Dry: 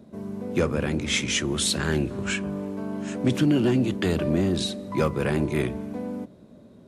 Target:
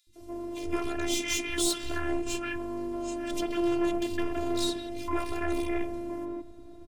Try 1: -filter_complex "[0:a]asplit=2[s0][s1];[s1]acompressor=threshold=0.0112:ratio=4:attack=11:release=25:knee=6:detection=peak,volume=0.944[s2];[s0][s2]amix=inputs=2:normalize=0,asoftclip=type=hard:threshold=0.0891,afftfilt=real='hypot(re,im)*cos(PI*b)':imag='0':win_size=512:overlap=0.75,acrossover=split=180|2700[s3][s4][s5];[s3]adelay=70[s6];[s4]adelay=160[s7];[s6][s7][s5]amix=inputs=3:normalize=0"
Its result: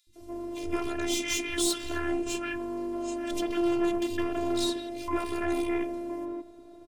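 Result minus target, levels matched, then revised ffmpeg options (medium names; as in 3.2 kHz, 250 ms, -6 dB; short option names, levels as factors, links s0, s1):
125 Hz band -3.0 dB
-filter_complex "[0:a]asplit=2[s0][s1];[s1]acompressor=threshold=0.0112:ratio=4:attack=11:release=25:knee=6:detection=peak,asubboost=boost=10.5:cutoff=160,volume=0.944[s2];[s0][s2]amix=inputs=2:normalize=0,asoftclip=type=hard:threshold=0.0891,afftfilt=real='hypot(re,im)*cos(PI*b)':imag='0':win_size=512:overlap=0.75,acrossover=split=180|2700[s3][s4][s5];[s3]adelay=70[s6];[s4]adelay=160[s7];[s6][s7][s5]amix=inputs=3:normalize=0"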